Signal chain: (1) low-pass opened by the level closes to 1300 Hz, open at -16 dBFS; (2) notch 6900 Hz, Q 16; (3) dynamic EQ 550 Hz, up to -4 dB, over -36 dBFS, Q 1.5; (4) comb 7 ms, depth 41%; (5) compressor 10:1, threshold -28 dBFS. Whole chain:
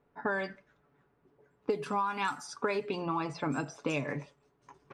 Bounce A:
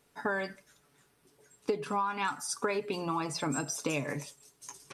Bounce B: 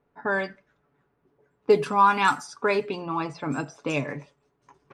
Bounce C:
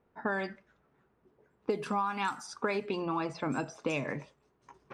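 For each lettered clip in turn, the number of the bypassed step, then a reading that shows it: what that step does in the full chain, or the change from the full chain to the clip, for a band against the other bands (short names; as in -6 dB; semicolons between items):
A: 1, 8 kHz band +12.5 dB; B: 5, mean gain reduction 5.0 dB; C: 4, momentary loudness spread change -2 LU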